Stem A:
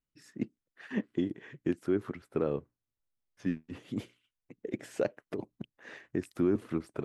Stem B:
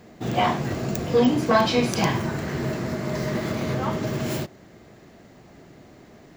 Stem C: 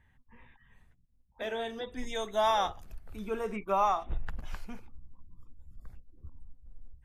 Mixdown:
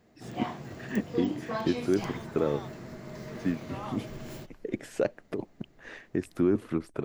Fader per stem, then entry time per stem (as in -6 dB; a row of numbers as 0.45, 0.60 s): +3.0, -15.0, -16.5 dB; 0.00, 0.00, 0.00 s